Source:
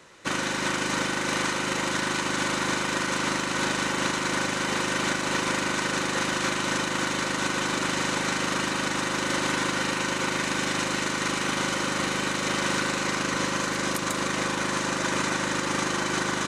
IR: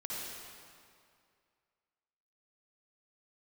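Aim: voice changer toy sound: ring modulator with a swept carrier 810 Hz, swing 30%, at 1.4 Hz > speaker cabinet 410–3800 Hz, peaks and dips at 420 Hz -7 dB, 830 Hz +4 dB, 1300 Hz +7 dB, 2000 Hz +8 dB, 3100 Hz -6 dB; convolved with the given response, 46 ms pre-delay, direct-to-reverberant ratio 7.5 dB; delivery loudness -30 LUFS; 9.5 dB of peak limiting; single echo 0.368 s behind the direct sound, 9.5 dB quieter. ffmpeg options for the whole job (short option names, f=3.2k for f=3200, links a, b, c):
-filter_complex "[0:a]alimiter=limit=-21.5dB:level=0:latency=1,aecho=1:1:368:0.335,asplit=2[a][b];[1:a]atrim=start_sample=2205,adelay=46[c];[b][c]afir=irnorm=-1:irlink=0,volume=-9.5dB[d];[a][d]amix=inputs=2:normalize=0,aeval=exprs='val(0)*sin(2*PI*810*n/s+810*0.3/1.4*sin(2*PI*1.4*n/s))':c=same,highpass=410,equalizer=f=420:t=q:w=4:g=-7,equalizer=f=830:t=q:w=4:g=4,equalizer=f=1.3k:t=q:w=4:g=7,equalizer=f=2k:t=q:w=4:g=8,equalizer=f=3.1k:t=q:w=4:g=-6,lowpass=f=3.8k:w=0.5412,lowpass=f=3.8k:w=1.3066,volume=-0.5dB"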